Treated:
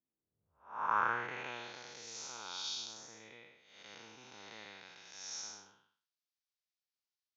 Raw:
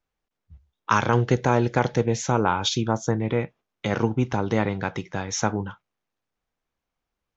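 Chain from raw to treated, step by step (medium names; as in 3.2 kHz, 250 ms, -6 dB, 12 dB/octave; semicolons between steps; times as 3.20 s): spectral blur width 292 ms; band-pass sweep 230 Hz -> 4.8 kHz, 0.00–1.80 s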